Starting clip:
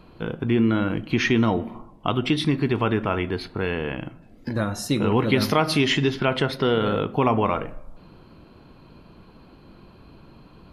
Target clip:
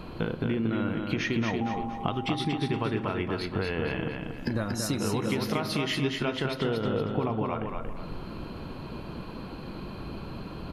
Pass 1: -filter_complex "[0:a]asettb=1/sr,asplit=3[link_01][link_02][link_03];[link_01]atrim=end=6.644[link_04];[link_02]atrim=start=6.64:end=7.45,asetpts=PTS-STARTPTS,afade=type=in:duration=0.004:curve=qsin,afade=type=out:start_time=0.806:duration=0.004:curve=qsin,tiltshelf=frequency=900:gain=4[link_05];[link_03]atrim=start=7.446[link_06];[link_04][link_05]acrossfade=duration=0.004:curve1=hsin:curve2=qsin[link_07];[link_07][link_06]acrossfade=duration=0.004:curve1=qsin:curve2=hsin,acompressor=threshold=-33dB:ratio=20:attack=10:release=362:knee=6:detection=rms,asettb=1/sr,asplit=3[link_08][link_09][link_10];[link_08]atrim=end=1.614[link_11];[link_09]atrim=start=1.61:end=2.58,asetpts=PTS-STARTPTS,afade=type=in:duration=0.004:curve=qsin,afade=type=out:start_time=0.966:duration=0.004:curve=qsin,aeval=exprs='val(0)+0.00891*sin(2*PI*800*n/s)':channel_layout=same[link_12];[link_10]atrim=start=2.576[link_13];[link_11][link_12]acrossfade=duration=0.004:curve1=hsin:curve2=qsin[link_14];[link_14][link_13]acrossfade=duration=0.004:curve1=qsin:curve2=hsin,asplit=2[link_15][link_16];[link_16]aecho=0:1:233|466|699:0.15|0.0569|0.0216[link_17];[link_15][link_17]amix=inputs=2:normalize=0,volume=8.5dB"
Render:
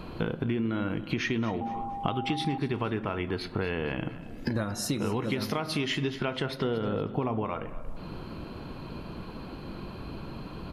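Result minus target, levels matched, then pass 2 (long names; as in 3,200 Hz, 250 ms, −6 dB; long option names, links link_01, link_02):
echo-to-direct −12 dB
-filter_complex "[0:a]asettb=1/sr,asplit=3[link_01][link_02][link_03];[link_01]atrim=end=6.644[link_04];[link_02]atrim=start=6.64:end=7.45,asetpts=PTS-STARTPTS,afade=type=in:duration=0.004:curve=qsin,afade=type=out:start_time=0.806:duration=0.004:curve=qsin,tiltshelf=frequency=900:gain=4[link_05];[link_03]atrim=start=7.446[link_06];[link_04][link_05]acrossfade=duration=0.004:curve1=hsin:curve2=qsin[link_07];[link_07][link_06]acrossfade=duration=0.004:curve1=qsin:curve2=hsin,acompressor=threshold=-33dB:ratio=20:attack=10:release=362:knee=6:detection=rms,asettb=1/sr,asplit=3[link_08][link_09][link_10];[link_08]atrim=end=1.614[link_11];[link_09]atrim=start=1.61:end=2.58,asetpts=PTS-STARTPTS,afade=type=in:duration=0.004:curve=qsin,afade=type=out:start_time=0.966:duration=0.004:curve=qsin,aeval=exprs='val(0)+0.00891*sin(2*PI*800*n/s)':channel_layout=same[link_12];[link_10]atrim=start=2.576[link_13];[link_11][link_12]acrossfade=duration=0.004:curve1=hsin:curve2=qsin[link_14];[link_14][link_13]acrossfade=duration=0.004:curve1=qsin:curve2=hsin,asplit=2[link_15][link_16];[link_16]aecho=0:1:233|466|699|932|1165:0.596|0.226|0.086|0.0327|0.0124[link_17];[link_15][link_17]amix=inputs=2:normalize=0,volume=8.5dB"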